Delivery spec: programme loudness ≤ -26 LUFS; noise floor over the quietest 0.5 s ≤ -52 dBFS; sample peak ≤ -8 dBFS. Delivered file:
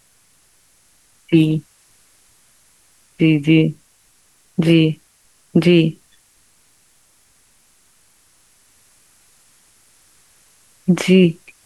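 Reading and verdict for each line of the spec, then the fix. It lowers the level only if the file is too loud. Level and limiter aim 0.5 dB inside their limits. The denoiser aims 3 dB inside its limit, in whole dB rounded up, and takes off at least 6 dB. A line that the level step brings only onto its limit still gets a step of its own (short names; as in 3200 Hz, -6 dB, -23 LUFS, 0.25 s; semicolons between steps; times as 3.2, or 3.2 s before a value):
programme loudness -16.0 LUFS: fail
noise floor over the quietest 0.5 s -56 dBFS: OK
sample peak -2.5 dBFS: fail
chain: gain -10.5 dB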